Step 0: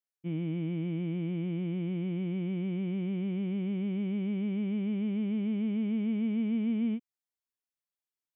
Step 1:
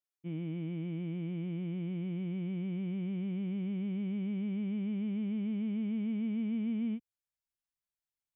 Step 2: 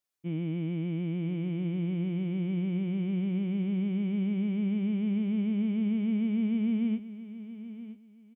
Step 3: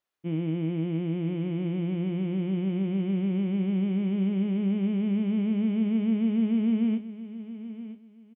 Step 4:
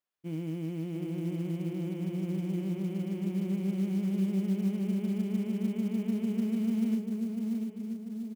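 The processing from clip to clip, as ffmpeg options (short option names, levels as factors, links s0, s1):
-af "asubboost=boost=3.5:cutoff=150,volume=0.596"
-af "aecho=1:1:971|1942:0.2|0.0439,volume=1.88"
-filter_complex "[0:a]bass=f=250:g=-5,treble=f=4000:g=-12,bandreject=f=2300:w=18,asplit=2[s0][s1];[s1]adelay=31,volume=0.237[s2];[s0][s2]amix=inputs=2:normalize=0,volume=2"
-filter_complex "[0:a]asplit=2[s0][s1];[s1]adelay=692,lowpass=f=1100:p=1,volume=0.708,asplit=2[s2][s3];[s3]adelay=692,lowpass=f=1100:p=1,volume=0.5,asplit=2[s4][s5];[s5]adelay=692,lowpass=f=1100:p=1,volume=0.5,asplit=2[s6][s7];[s7]adelay=692,lowpass=f=1100:p=1,volume=0.5,asplit=2[s8][s9];[s9]adelay=692,lowpass=f=1100:p=1,volume=0.5,asplit=2[s10][s11];[s11]adelay=692,lowpass=f=1100:p=1,volume=0.5,asplit=2[s12][s13];[s13]adelay=692,lowpass=f=1100:p=1,volume=0.5[s14];[s0][s2][s4][s6][s8][s10][s12][s14]amix=inputs=8:normalize=0,acrusher=bits=7:mode=log:mix=0:aa=0.000001,volume=0.473"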